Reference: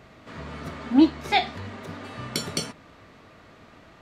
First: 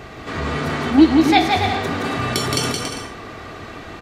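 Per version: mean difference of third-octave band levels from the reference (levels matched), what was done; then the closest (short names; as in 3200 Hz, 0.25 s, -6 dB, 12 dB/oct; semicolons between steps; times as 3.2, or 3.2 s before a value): 7.0 dB: comb 2.6 ms, depth 34%; in parallel at -1 dB: negative-ratio compressor -37 dBFS, ratio -1; on the sum: bouncing-ball echo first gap 0.17 s, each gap 0.65×, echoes 5; gain +4 dB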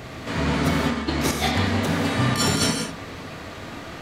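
11.5 dB: bell 1200 Hz -3 dB 0.68 oct; negative-ratio compressor -33 dBFS, ratio -0.5; high shelf 6000 Hz +6.5 dB; non-linear reverb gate 0.22 s flat, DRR 1.5 dB; gain +7 dB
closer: first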